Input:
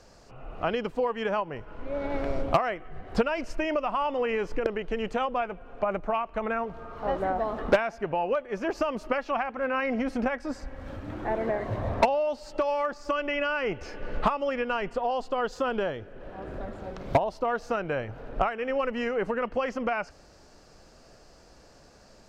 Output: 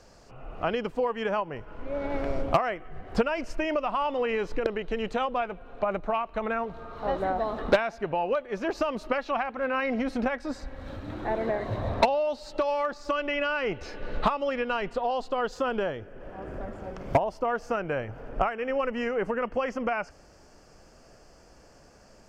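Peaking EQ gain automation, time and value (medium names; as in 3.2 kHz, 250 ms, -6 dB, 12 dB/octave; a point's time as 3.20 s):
peaking EQ 3.9 kHz 0.26 oct
3.44 s -2 dB
3.95 s +9.5 dB
15.07 s +9.5 dB
15.66 s -1.5 dB
16.11 s -11.5 dB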